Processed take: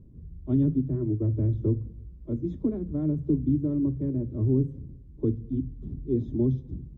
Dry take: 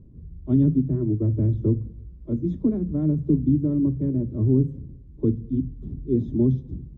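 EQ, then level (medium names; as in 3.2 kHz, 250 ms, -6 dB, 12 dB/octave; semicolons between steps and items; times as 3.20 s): dynamic bell 190 Hz, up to -6 dB, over -34 dBFS, Q 2.1; -2.5 dB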